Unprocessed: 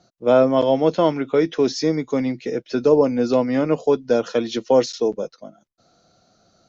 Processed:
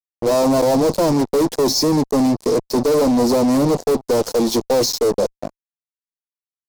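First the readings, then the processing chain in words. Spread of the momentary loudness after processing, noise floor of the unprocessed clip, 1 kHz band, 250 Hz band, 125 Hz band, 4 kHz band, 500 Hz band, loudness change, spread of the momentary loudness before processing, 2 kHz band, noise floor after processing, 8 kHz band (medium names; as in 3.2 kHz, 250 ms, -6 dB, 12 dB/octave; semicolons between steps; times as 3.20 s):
4 LU, -63 dBFS, +3.0 dB, +4.0 dB, +4.5 dB, +8.0 dB, +1.0 dB, +2.5 dB, 7 LU, -0.5 dB, under -85 dBFS, no reading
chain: fuzz box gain 32 dB, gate -35 dBFS; high-order bell 2.1 kHz -13 dB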